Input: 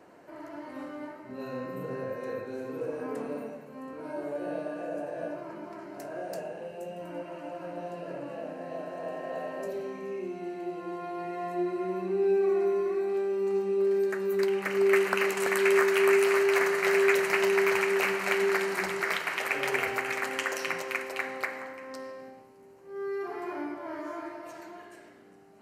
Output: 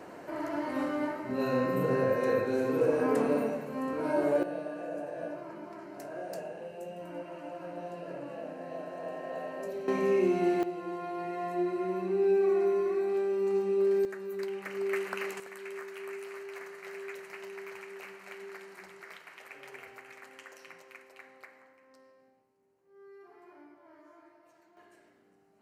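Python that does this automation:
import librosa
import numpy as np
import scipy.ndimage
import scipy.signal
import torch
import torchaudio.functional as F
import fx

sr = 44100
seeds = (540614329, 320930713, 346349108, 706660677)

y = fx.gain(x, sr, db=fx.steps((0.0, 8.0), (4.43, -2.5), (9.88, 10.0), (10.63, -0.5), (14.05, -9.0), (15.4, -19.0), (24.77, -10.5)))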